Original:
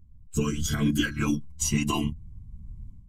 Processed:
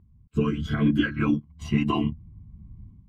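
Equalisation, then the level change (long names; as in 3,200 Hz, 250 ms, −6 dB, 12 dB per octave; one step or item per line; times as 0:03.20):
high-pass filter 130 Hz 6 dB per octave
high-frequency loss of the air 450 metres
notch filter 890 Hz, Q 23
+5.0 dB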